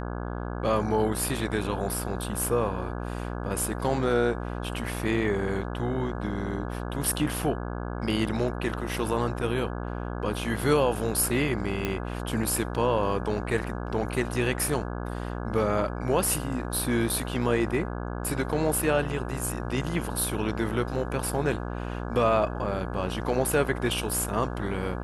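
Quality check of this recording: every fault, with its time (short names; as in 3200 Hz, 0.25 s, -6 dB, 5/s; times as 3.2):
buzz 60 Hz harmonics 28 -33 dBFS
11.85 pop -13 dBFS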